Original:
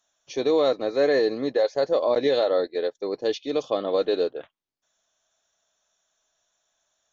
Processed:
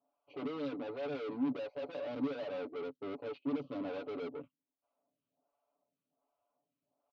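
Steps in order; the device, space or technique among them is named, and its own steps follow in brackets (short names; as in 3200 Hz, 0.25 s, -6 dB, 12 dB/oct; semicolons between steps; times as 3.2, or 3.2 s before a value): Wiener smoothing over 25 samples; vibe pedal into a guitar amplifier (photocell phaser 1.3 Hz; tube stage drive 42 dB, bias 0.4; speaker cabinet 100–4200 Hz, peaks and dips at 260 Hz +10 dB, 410 Hz -3 dB, 1700 Hz -9 dB); high shelf 6000 Hz -11 dB; comb 7 ms, depth 72%; gain +1.5 dB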